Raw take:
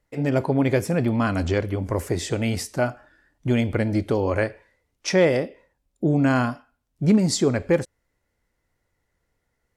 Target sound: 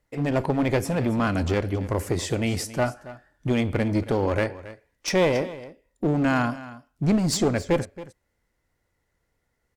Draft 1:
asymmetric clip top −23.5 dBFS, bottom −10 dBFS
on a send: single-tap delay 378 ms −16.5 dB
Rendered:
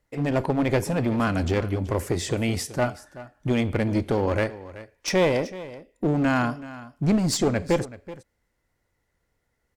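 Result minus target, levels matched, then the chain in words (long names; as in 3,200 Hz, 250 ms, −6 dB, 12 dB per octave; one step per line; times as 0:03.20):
echo 104 ms late
asymmetric clip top −23.5 dBFS, bottom −10 dBFS
on a send: single-tap delay 274 ms −16.5 dB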